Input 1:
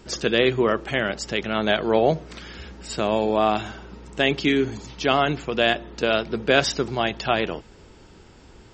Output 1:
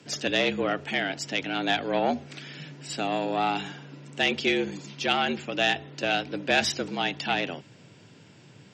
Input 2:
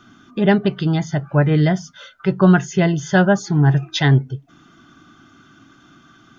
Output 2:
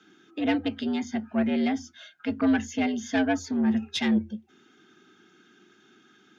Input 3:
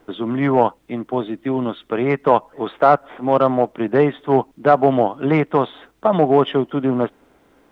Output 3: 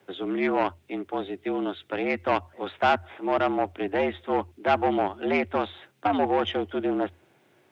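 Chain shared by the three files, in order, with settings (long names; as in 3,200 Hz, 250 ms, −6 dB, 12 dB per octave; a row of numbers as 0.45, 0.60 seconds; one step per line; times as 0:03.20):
tube saturation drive 8 dB, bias 0.5
graphic EQ with 15 bands 400 Hz −7 dB, 1,000 Hz −6 dB, 2,500 Hz +4 dB
frequency shifter +83 Hz
loudness normalisation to −27 LKFS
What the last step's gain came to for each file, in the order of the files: −0.5, −6.0, −2.5 decibels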